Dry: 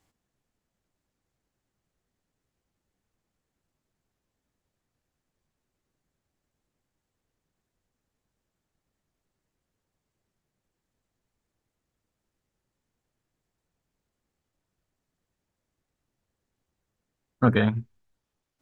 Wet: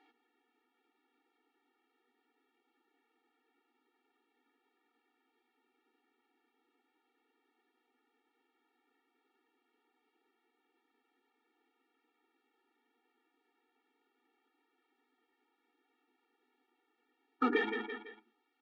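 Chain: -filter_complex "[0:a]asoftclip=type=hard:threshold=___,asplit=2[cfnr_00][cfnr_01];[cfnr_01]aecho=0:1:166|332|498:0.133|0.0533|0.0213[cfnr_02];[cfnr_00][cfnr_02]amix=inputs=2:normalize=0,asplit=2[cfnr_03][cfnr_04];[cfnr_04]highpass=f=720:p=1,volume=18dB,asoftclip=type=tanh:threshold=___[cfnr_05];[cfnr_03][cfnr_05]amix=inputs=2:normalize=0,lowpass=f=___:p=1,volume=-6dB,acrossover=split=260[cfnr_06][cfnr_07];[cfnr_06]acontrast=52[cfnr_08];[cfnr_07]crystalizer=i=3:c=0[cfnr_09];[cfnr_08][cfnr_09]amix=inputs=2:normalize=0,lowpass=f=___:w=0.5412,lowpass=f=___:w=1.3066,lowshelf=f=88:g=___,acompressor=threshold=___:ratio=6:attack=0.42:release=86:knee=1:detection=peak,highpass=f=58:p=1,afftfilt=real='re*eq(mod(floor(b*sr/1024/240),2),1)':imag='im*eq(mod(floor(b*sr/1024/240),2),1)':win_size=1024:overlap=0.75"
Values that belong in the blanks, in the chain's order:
-15.5dB, -14dB, 2200, 3100, 3100, 5.5, -20dB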